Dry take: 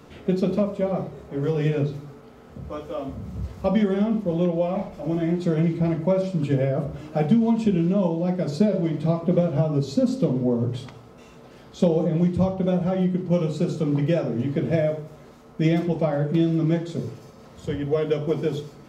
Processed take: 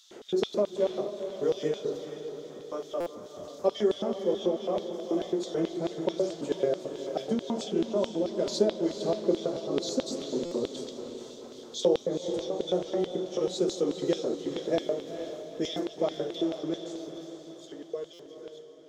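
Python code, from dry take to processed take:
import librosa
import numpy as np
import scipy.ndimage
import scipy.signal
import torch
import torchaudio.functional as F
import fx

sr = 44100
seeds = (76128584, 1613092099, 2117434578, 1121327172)

p1 = fx.fade_out_tail(x, sr, length_s=3.53)
p2 = fx.graphic_eq_15(p1, sr, hz=(400, 2500, 6300), db=(-7, -10, 10))
p3 = fx.filter_lfo_highpass(p2, sr, shape='square', hz=4.6, low_hz=390.0, high_hz=3500.0, q=5.6)
p4 = p3 + fx.echo_diffused(p3, sr, ms=456, feedback_pct=51, wet_db=-8.5, dry=0)
p5 = fx.buffer_glitch(p4, sr, at_s=(3.0, 10.45, 18.13), block=256, repeats=10)
y = p5 * 10.0 ** (-4.5 / 20.0)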